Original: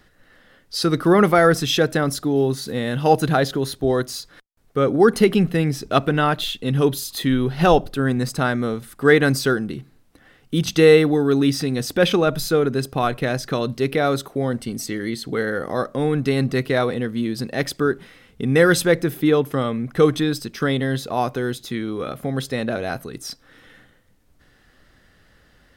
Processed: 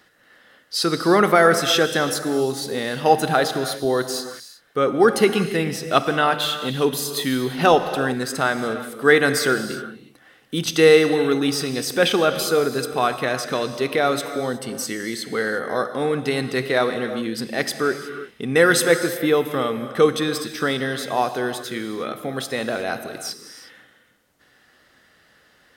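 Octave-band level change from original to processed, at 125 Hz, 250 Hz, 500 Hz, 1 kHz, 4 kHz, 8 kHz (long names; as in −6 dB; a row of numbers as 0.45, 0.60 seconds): −7.5, −3.5, 0.0, +1.5, +2.5, +3.5 decibels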